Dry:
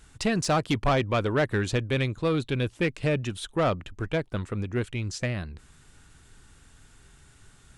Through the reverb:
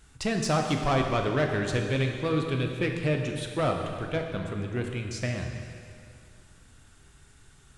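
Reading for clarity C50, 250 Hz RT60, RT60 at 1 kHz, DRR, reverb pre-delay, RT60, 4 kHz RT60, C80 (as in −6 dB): 4.0 dB, 2.5 s, 2.4 s, 2.5 dB, 5 ms, 2.4 s, 2.3 s, 5.0 dB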